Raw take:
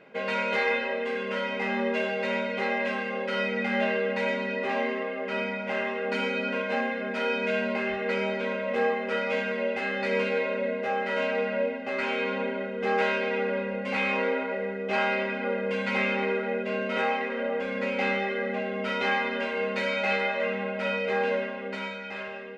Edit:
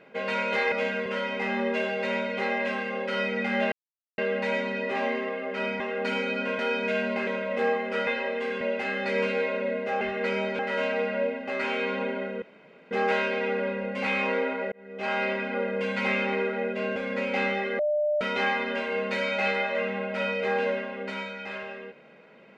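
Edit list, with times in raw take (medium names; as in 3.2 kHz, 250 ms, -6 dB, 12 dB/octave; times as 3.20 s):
0.72–1.26 s: swap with 9.24–9.58 s
3.92 s: insert silence 0.46 s
5.54–5.87 s: delete
6.66–7.18 s: delete
7.86–8.44 s: move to 10.98 s
12.81 s: insert room tone 0.49 s
14.62–15.16 s: fade in linear
16.86–17.61 s: delete
18.44–18.86 s: bleep 598 Hz -22 dBFS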